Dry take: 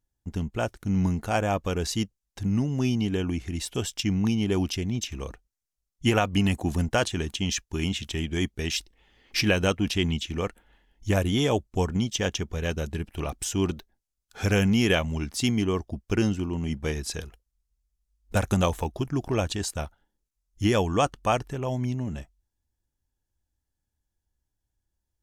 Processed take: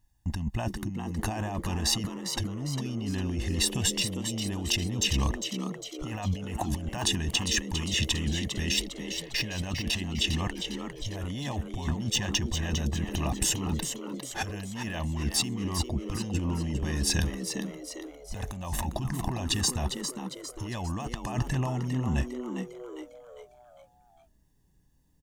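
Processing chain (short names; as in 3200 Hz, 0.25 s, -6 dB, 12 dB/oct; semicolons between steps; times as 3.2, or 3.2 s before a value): de-esser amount 60%; comb 1.1 ms, depth 92%; negative-ratio compressor -31 dBFS, ratio -1; on a send: frequency-shifting echo 0.403 s, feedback 46%, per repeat +120 Hz, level -7.5 dB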